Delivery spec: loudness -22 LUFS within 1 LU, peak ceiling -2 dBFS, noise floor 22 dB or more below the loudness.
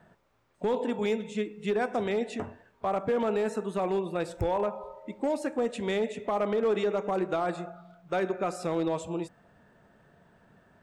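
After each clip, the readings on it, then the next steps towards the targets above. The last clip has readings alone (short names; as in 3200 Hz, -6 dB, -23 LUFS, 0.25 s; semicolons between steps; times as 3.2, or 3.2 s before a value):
clipped 0.8%; flat tops at -21.0 dBFS; loudness -30.5 LUFS; peak -21.0 dBFS; loudness target -22.0 LUFS
-> clip repair -21 dBFS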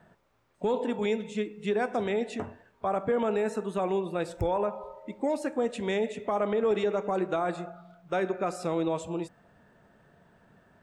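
clipped 0.0%; loudness -30.0 LUFS; peak -16.5 dBFS; loudness target -22.0 LUFS
-> gain +8 dB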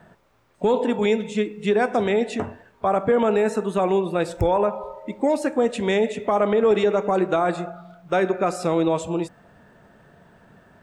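loudness -22.0 LUFS; peak -8.5 dBFS; noise floor -58 dBFS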